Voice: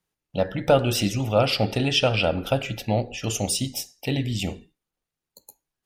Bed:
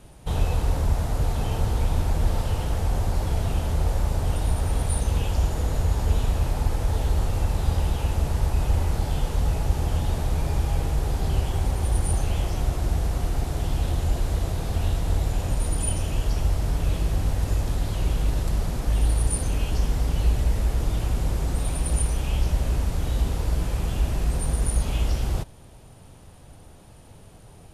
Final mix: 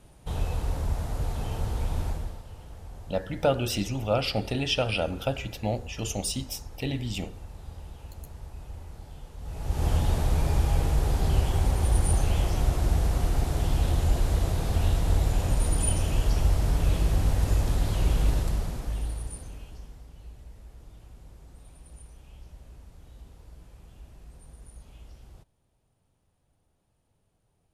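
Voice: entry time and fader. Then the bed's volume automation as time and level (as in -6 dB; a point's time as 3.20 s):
2.75 s, -5.5 dB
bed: 2.08 s -6 dB
2.42 s -19 dB
9.37 s -19 dB
9.86 s 0 dB
18.30 s 0 dB
20.09 s -24.5 dB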